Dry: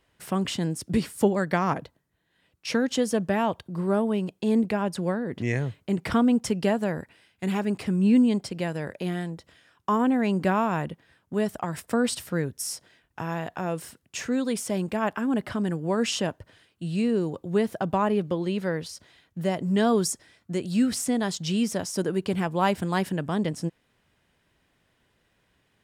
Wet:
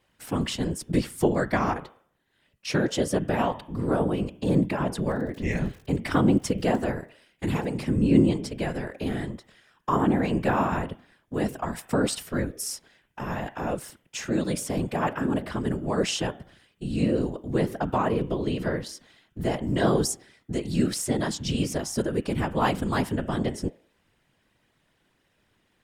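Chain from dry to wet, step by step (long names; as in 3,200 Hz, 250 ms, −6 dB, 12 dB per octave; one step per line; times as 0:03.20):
hum removal 102.8 Hz, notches 35
0:05.09–0:06.81: surface crackle 48 per second −36 dBFS
random phases in short frames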